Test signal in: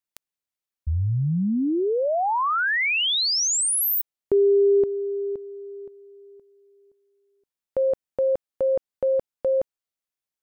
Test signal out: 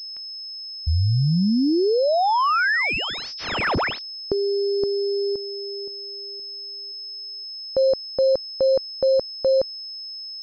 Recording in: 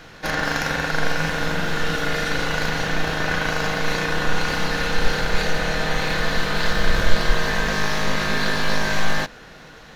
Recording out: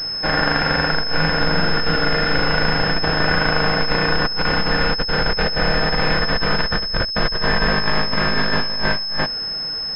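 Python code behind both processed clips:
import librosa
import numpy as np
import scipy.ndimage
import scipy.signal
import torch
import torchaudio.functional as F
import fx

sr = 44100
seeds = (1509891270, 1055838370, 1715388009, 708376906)

y = fx.over_compress(x, sr, threshold_db=-20.0, ratio=-0.5)
y = fx.pwm(y, sr, carrier_hz=5200.0)
y = F.gain(torch.from_numpy(y), 3.0).numpy()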